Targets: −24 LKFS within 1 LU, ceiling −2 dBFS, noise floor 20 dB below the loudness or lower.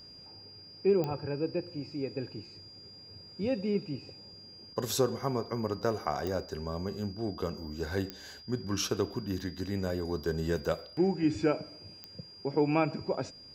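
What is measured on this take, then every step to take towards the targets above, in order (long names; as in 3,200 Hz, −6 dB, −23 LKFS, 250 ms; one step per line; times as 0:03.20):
number of clicks 4; interfering tone 4,800 Hz; level of the tone −49 dBFS; integrated loudness −33.0 LKFS; sample peak −13.0 dBFS; target loudness −24.0 LKFS
→ click removal
notch filter 4,800 Hz, Q 30
level +9 dB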